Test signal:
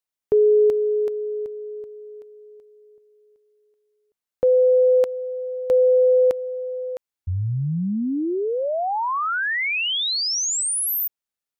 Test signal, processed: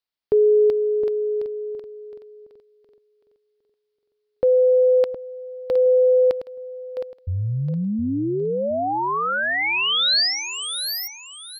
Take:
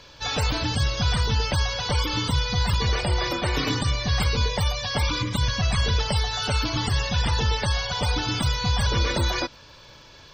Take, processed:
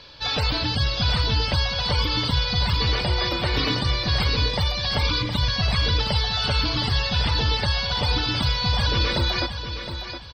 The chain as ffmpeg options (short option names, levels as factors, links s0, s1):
-af "highshelf=f=5600:t=q:w=3:g=-7,aecho=1:1:715|1430|2145:0.335|0.0904|0.0244"